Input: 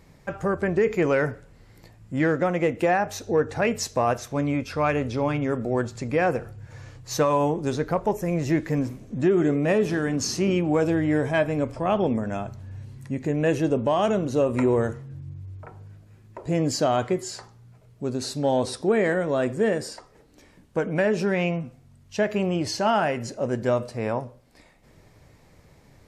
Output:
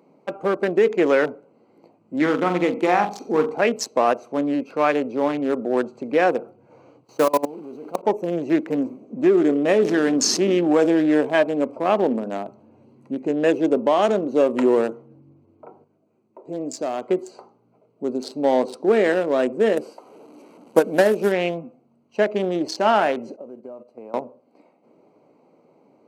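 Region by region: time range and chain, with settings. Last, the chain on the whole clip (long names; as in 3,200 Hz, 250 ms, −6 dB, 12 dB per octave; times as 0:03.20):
0:02.21–0:03.55: comb filter 0.9 ms, depth 54% + flutter between parallel walls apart 7.7 metres, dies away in 0.42 s
0:07.04–0:08.03: one scale factor per block 3 bits + low-shelf EQ 450 Hz +3.5 dB + output level in coarse steps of 19 dB
0:09.79–0:11.21: low-pass filter 11,000 Hz + envelope flattener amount 50%
0:15.84–0:17.09: parametric band 7,300 Hz +7 dB 0.75 octaves + tuned comb filter 130 Hz, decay 0.57 s, harmonics odd
0:19.77–0:21.32: linear delta modulator 64 kbit/s, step −40.5 dBFS + high-shelf EQ 8,200 Hz +12 dB + transient designer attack +7 dB, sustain −2 dB
0:23.36–0:24.14: variable-slope delta modulation 64 kbit/s + noise gate −31 dBFS, range −15 dB + downward compressor 16 to 1, threshold −36 dBFS
whole clip: adaptive Wiener filter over 25 samples; high-pass filter 240 Hz 24 dB per octave; level +5 dB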